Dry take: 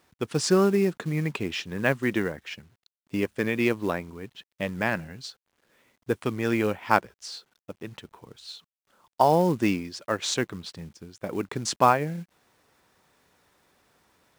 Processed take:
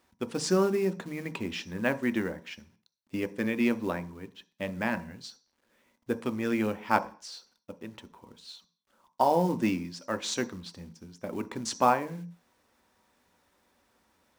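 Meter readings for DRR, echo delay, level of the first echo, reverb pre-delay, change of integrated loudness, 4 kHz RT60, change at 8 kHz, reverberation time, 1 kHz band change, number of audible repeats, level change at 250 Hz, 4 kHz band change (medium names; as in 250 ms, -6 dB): 8.0 dB, no echo, no echo, 3 ms, -4.0 dB, 0.45 s, -4.5 dB, 0.40 s, -3.5 dB, no echo, -2.5 dB, -5.0 dB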